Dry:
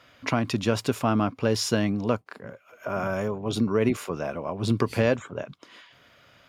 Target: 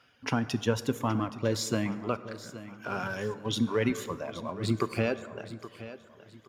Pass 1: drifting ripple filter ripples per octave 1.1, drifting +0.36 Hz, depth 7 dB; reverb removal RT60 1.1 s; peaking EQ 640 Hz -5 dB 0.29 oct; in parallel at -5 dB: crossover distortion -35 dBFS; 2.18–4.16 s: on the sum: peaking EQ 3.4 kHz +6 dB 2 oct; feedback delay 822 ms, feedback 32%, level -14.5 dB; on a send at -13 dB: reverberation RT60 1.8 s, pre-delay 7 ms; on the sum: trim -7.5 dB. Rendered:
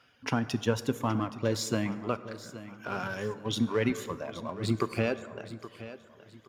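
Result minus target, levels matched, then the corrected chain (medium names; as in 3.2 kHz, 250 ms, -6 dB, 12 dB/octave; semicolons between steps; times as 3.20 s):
crossover distortion: distortion +7 dB
drifting ripple filter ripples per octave 1.1, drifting +0.36 Hz, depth 7 dB; reverb removal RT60 1.1 s; peaking EQ 640 Hz -5 dB 0.29 oct; in parallel at -5 dB: crossover distortion -43.5 dBFS; 2.18–4.16 s: on the sum: peaking EQ 3.4 kHz +6 dB 2 oct; feedback delay 822 ms, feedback 32%, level -14.5 dB; on a send at -13 dB: reverberation RT60 1.8 s, pre-delay 7 ms; on the sum: trim -7.5 dB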